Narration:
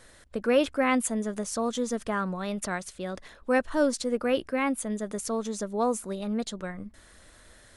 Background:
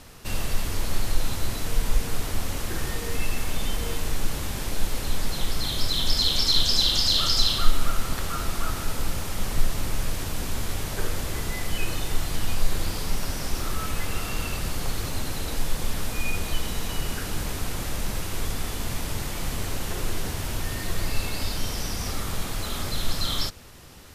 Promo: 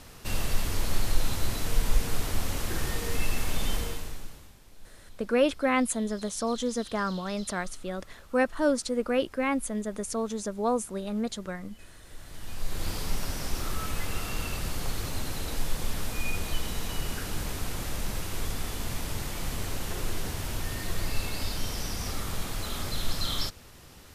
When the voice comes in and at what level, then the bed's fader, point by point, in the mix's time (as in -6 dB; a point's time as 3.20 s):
4.85 s, -0.5 dB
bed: 3.77 s -1.5 dB
4.60 s -25.5 dB
11.98 s -25.5 dB
12.89 s -3.5 dB